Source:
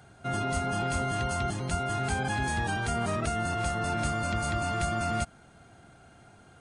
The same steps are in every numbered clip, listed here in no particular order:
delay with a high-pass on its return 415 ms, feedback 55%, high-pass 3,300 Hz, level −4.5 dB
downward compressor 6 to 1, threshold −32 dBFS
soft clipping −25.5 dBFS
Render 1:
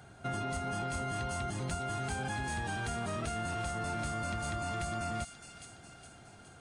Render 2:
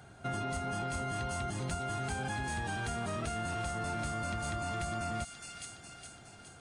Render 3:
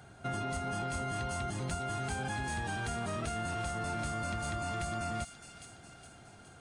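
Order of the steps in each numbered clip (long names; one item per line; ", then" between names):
downward compressor, then delay with a high-pass on its return, then soft clipping
delay with a high-pass on its return, then downward compressor, then soft clipping
downward compressor, then soft clipping, then delay with a high-pass on its return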